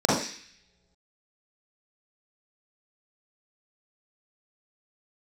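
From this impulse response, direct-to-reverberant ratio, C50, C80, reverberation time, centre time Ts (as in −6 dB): −7.0 dB, −1.0 dB, 5.5 dB, non-exponential decay, 59 ms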